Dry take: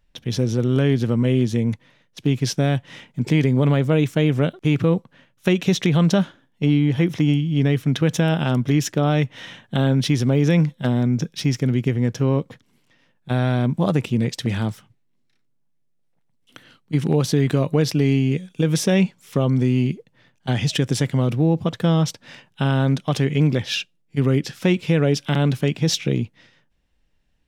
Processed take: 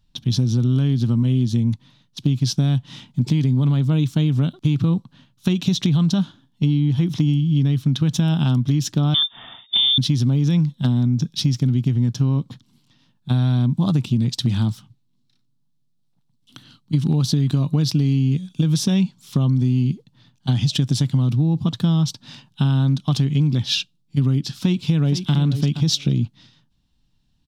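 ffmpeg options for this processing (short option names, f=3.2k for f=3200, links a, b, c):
-filter_complex "[0:a]asettb=1/sr,asplit=3[a][b][c];[a]atrim=end=9.144[d];[b]atrim=start=9.14:end=9.98,asetpts=PTS-STARTPTS,afade=t=in:d=0.004:c=qsin,afade=t=out:st=0.836:d=0.004:c=qsin,lowpass=f=3.1k:t=q:w=0.5098,lowpass=f=3.1k:t=q:w=0.6013,lowpass=f=3.1k:t=q:w=0.9,lowpass=f=3.1k:t=q:w=2.563,afreqshift=-3700[e];[c]atrim=start=9.976[f];[d][e]acrossfade=d=0.004:c1=hsin:c2=qsin[g];[g][f]acrossfade=d=0.004:c1=qsin:c2=hsin,asplit=2[h][i];[i]afade=t=in:st=24.58:d=0.01,afade=t=out:st=25.33:d=0.01,aecho=0:1:470|940:0.281838|0.0281838[j];[h][j]amix=inputs=2:normalize=0,equalizer=f=125:t=o:w=1:g=8,equalizer=f=250:t=o:w=1:g=6,equalizer=f=500:t=o:w=1:g=-12,equalizer=f=1k:t=o:w=1:g=4,equalizer=f=2k:t=o:w=1:g=-11,equalizer=f=4k:t=o:w=1:g=10,acompressor=threshold=-15dB:ratio=6"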